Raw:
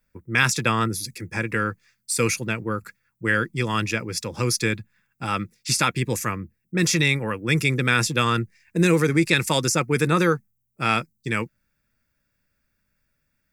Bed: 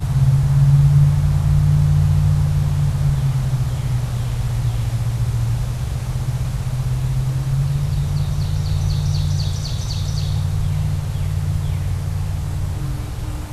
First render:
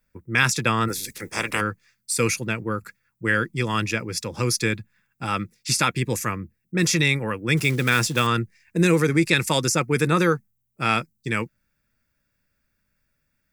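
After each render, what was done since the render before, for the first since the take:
0:00.87–0:01.60: ceiling on every frequency bin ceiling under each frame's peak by 24 dB
0:07.57–0:08.27: one scale factor per block 5 bits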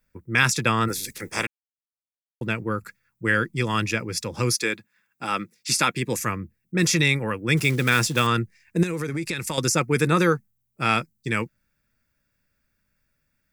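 0:01.47–0:02.41: silence
0:04.54–0:06.17: high-pass filter 350 Hz → 140 Hz
0:08.83–0:09.58: downward compressor, threshold −24 dBFS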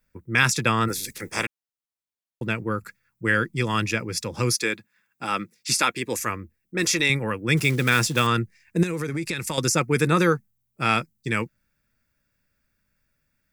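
0:05.75–0:07.10: parametric band 150 Hz −12.5 dB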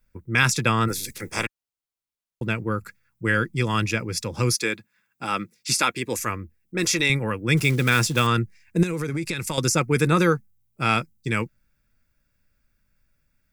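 low-shelf EQ 63 Hz +11 dB
notch filter 1,800 Hz, Q 19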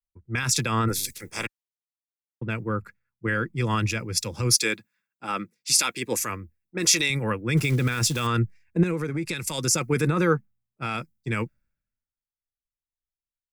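brickwall limiter −15 dBFS, peak gain reduction 10.5 dB
multiband upward and downward expander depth 100%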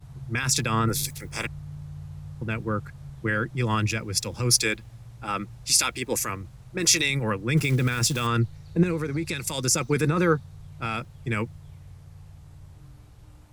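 mix in bed −24 dB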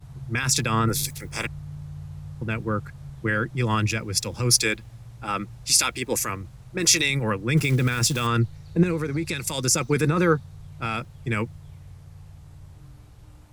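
level +1.5 dB

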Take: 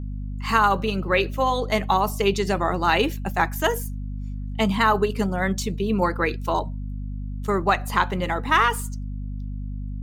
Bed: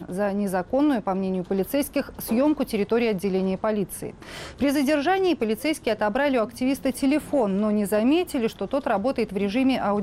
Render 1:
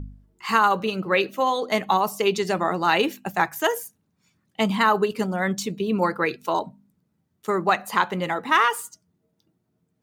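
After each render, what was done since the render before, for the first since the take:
hum removal 50 Hz, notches 5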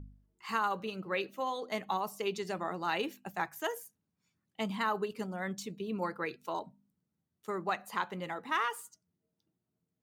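level −13 dB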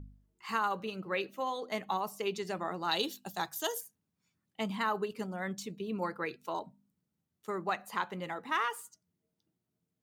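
0:02.91–0:03.81: high shelf with overshoot 2,900 Hz +7.5 dB, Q 3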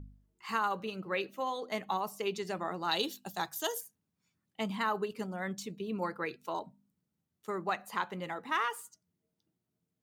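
no processing that can be heard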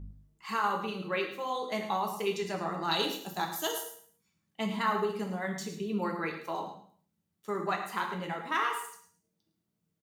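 repeating echo 107 ms, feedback 26%, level −12 dB
reverb whose tail is shaped and stops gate 200 ms falling, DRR 2 dB

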